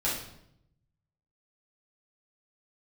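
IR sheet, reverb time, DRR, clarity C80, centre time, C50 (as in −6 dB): 0.75 s, −8.0 dB, 7.5 dB, 44 ms, 3.5 dB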